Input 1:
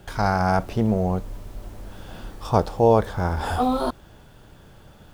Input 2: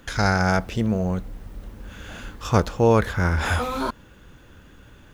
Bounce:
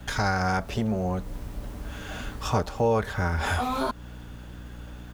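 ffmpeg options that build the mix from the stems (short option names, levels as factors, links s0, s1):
-filter_complex "[0:a]highpass=460,volume=1[s0];[1:a]aeval=exprs='val(0)+0.00891*(sin(2*PI*60*n/s)+sin(2*PI*2*60*n/s)/2+sin(2*PI*3*60*n/s)/3+sin(2*PI*4*60*n/s)/4+sin(2*PI*5*60*n/s)/5)':c=same,adelay=6.1,volume=1.06[s1];[s0][s1]amix=inputs=2:normalize=0,acompressor=threshold=0.0447:ratio=2"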